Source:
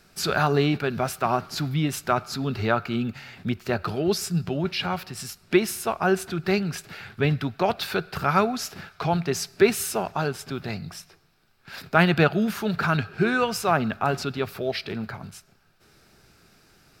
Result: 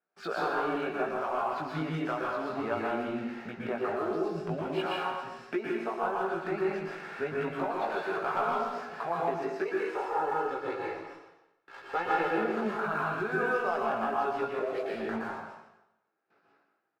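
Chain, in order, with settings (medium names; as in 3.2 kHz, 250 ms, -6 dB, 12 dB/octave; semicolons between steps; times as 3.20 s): 9.65–12.38 s: comb filter that takes the minimum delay 2.3 ms; gate with hold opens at -44 dBFS; high-pass 460 Hz 12 dB/octave; spectral gate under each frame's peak -25 dB strong; low-pass 1.3 kHz 12 dB/octave; waveshaping leveller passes 1; compression 2.5:1, threshold -35 dBFS, peak gain reduction 13.5 dB; chorus 0.35 Hz, delay 17 ms, depth 2.1 ms; speakerphone echo 160 ms, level -10 dB; plate-style reverb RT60 0.88 s, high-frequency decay 0.95×, pre-delay 105 ms, DRR -3.5 dB; trim +2.5 dB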